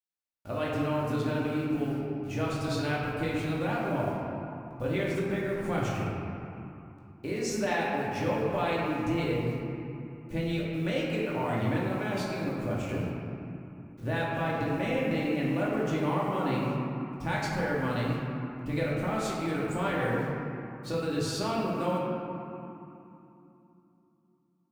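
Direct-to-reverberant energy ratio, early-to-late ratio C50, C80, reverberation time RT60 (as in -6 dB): -6.0 dB, -1.5 dB, 0.0 dB, 2.9 s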